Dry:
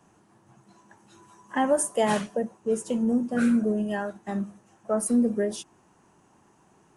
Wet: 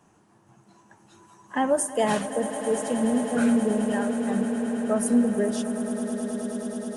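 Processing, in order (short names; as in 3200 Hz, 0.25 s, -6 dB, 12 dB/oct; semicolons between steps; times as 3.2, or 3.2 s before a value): vibrato 15 Hz 21 cents; swelling echo 0.106 s, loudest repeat 8, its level -15 dB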